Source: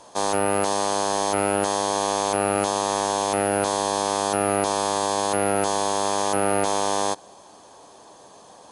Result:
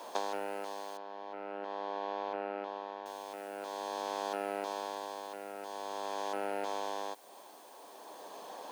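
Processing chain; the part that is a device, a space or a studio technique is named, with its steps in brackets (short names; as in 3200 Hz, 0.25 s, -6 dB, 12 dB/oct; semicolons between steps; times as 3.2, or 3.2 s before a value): medium wave at night (BPF 190–4200 Hz; compressor 10:1, threshold -33 dBFS, peak gain reduction 16 dB; tremolo 0.46 Hz, depth 61%; whine 9000 Hz -71 dBFS; white noise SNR 23 dB); 0.97–3.06 air absorption 310 m; HPF 270 Hz 12 dB/oct; notch 1200 Hz, Q 19; gain +2.5 dB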